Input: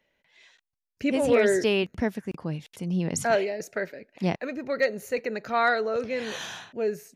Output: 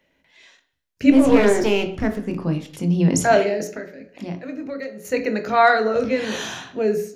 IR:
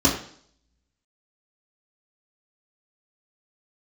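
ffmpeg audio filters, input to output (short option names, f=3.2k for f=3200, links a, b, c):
-filter_complex "[0:a]asettb=1/sr,asplit=3[a][b][c];[a]atrim=end=1.104[d];[b]atrim=start=1.1:end=2.26,asetpts=PTS-STARTPTS,afade=t=in:d=0.004:c=qsin,afade=t=out:st=1.156:d=0.004:c=qsin,aeval=exprs='if(lt(val(0),0),0.251*val(0),val(0))':c=same[e];[c]atrim=start=2.256[f];[d][e]acrossfade=d=0.004:c1=hsin:c2=qsin[g];[g][f]acrossfade=d=0.004:c1=qsin:c2=hsin,asettb=1/sr,asplit=3[h][i][j];[h]atrim=end=3.684[k];[i]atrim=start=3.68:end=5.05,asetpts=PTS-STARTPTS,afade=t=in:d=0.004:c=qsin,afade=t=out:st=1.366:d=0.004:c=qsin,acompressor=threshold=-43dB:ratio=2.5[l];[j]atrim=start=5.046[m];[k][l]acrossfade=d=0.004:c1=hsin:c2=qsin[n];[n][m]acrossfade=d=0.004:c1=qsin:c2=hsin,asplit=2[o][p];[1:a]atrim=start_sample=2205,adelay=18[q];[p][q]afir=irnorm=-1:irlink=0,volume=-22dB[r];[o][r]amix=inputs=2:normalize=0,volume=5.5dB"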